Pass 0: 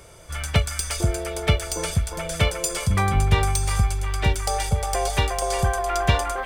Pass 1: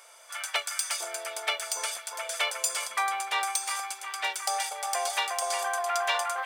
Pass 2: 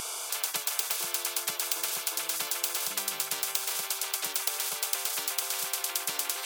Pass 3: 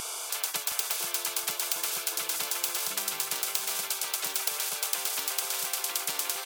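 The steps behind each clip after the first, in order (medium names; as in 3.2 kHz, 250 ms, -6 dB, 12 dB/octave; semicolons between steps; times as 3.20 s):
high-pass 710 Hz 24 dB/octave; trim -2 dB
static phaser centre 370 Hz, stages 8; spectrum-flattening compressor 10:1; trim +5.5 dB
feedback delay 718 ms, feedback 37%, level -9.5 dB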